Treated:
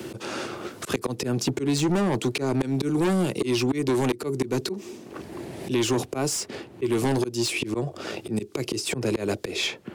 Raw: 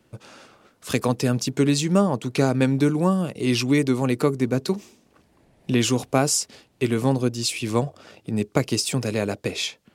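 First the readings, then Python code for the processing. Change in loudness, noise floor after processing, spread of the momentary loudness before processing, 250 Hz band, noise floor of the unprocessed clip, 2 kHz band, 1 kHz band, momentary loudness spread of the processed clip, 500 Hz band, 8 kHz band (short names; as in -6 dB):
-3.5 dB, -46 dBFS, 8 LU, -3.5 dB, -62 dBFS, -1.5 dB, -3.5 dB, 11 LU, -2.0 dB, -4.0 dB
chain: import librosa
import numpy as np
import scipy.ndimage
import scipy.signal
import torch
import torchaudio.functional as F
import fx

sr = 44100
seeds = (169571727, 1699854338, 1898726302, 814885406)

y = scipy.signal.sosfilt(scipy.signal.butter(4, 78.0, 'highpass', fs=sr, output='sos'), x)
y = fx.peak_eq(y, sr, hz=360.0, db=11.0, octaves=0.36)
y = fx.auto_swell(y, sr, attack_ms=278.0)
y = 10.0 ** (-21.5 / 20.0) * np.tanh(y / 10.0 ** (-21.5 / 20.0))
y = fx.band_squash(y, sr, depth_pct=70)
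y = y * librosa.db_to_amplitude(4.0)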